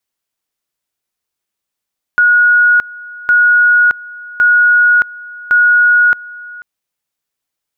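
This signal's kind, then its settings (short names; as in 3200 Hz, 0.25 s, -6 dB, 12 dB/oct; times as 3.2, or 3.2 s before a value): two-level tone 1450 Hz -5.5 dBFS, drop 21.5 dB, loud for 0.62 s, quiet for 0.49 s, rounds 4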